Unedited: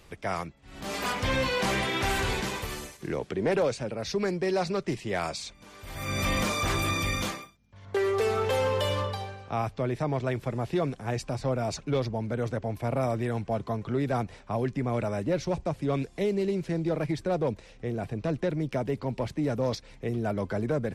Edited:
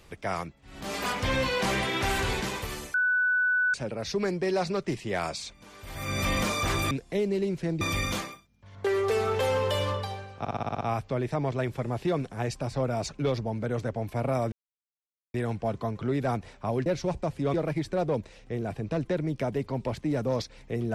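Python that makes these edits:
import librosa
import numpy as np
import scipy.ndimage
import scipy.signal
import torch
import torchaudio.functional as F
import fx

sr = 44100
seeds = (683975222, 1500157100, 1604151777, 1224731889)

y = fx.edit(x, sr, fx.bleep(start_s=2.94, length_s=0.8, hz=1490.0, db=-21.5),
    fx.stutter(start_s=9.49, slice_s=0.06, count=8),
    fx.insert_silence(at_s=13.2, length_s=0.82),
    fx.cut(start_s=14.72, length_s=0.57),
    fx.move(start_s=15.97, length_s=0.9, to_s=6.91), tone=tone)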